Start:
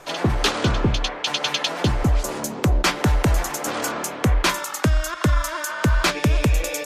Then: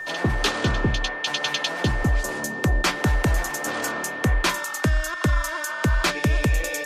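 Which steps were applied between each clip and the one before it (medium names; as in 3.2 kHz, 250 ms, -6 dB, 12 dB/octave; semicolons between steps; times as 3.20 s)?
whistle 1.8 kHz -28 dBFS; trim -2.5 dB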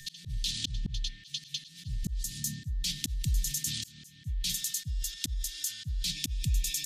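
elliptic band-stop 150–3600 Hz, stop band 80 dB; slow attack 424 ms; in parallel at -2 dB: compressor with a negative ratio -36 dBFS, ratio -0.5; on the sum: trim -1.5 dB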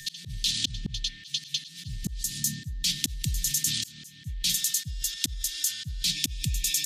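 bass shelf 110 Hz -11 dB; trim +6.5 dB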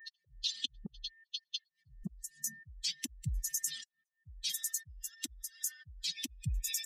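expander on every frequency bin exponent 3; trim -3 dB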